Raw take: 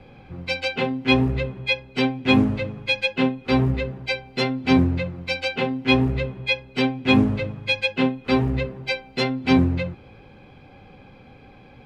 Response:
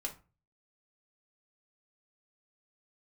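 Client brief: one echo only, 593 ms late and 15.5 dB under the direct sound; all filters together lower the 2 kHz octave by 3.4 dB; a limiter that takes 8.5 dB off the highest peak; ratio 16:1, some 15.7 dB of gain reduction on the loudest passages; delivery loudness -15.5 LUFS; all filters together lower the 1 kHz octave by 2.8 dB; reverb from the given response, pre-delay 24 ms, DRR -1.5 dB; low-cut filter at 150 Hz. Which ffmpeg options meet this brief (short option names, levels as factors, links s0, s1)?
-filter_complex "[0:a]highpass=150,equalizer=f=1000:t=o:g=-3,equalizer=f=2000:t=o:g=-4,acompressor=threshold=0.0355:ratio=16,alimiter=level_in=1.33:limit=0.0631:level=0:latency=1,volume=0.75,aecho=1:1:593:0.168,asplit=2[s0][s1];[1:a]atrim=start_sample=2205,adelay=24[s2];[s1][s2]afir=irnorm=-1:irlink=0,volume=1.19[s3];[s0][s3]amix=inputs=2:normalize=0,volume=7.5"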